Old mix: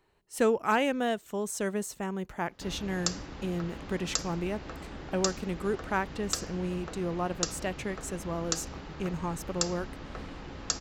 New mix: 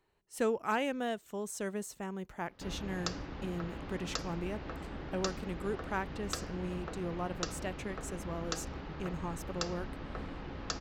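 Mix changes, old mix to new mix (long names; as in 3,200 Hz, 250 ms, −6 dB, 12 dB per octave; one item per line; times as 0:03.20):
speech −6.0 dB
background: add high-frequency loss of the air 160 metres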